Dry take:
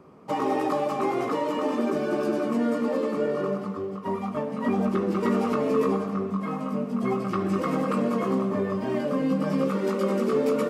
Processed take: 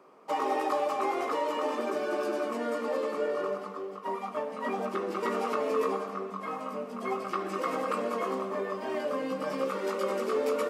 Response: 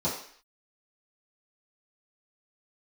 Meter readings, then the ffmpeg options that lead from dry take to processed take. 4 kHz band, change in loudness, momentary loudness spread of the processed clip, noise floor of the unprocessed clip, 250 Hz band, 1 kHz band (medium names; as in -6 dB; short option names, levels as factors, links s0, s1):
-1.0 dB, -5.5 dB, 7 LU, -34 dBFS, -12.0 dB, -1.5 dB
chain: -af "highpass=470,volume=0.891"